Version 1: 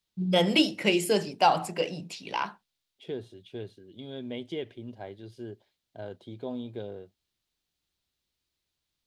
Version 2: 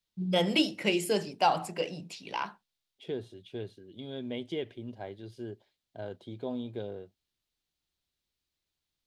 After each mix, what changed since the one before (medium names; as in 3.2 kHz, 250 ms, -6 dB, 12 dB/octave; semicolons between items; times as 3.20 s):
first voice -3.5 dB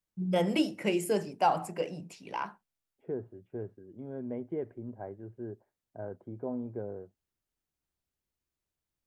second voice: add low-pass 1.6 kHz 24 dB/octave; master: add peaking EQ 3.8 kHz -12.5 dB 1.1 oct